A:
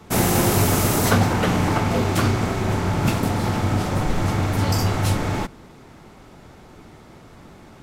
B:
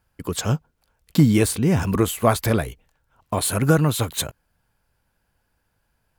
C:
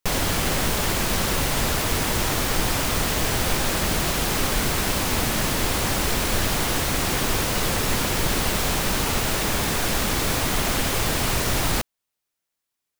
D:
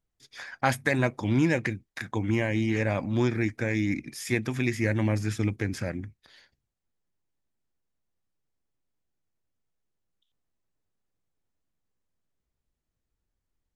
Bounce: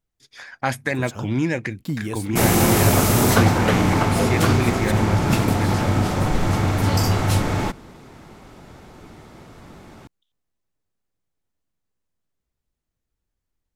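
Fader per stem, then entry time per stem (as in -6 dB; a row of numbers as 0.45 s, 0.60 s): +1.5 dB, -11.5 dB, mute, +1.5 dB; 2.25 s, 0.70 s, mute, 0.00 s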